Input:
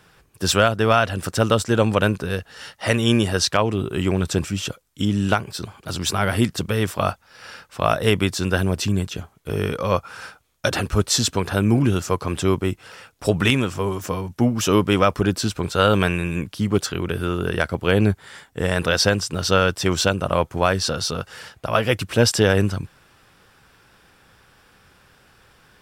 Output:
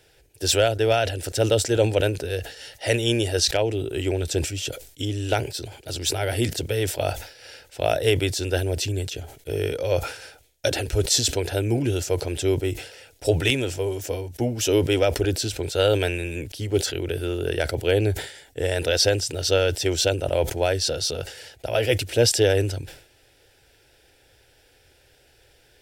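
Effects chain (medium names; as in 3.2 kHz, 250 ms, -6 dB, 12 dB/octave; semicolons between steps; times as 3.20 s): static phaser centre 470 Hz, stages 4; decay stretcher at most 100 dB/s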